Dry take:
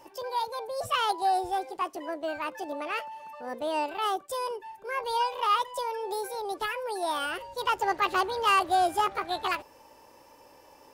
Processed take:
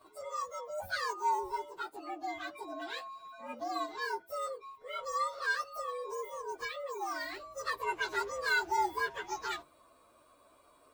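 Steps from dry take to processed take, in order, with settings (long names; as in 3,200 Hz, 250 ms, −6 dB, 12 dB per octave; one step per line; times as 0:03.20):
partials spread apart or drawn together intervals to 116%
hum removal 48.47 Hz, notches 7
level −4.5 dB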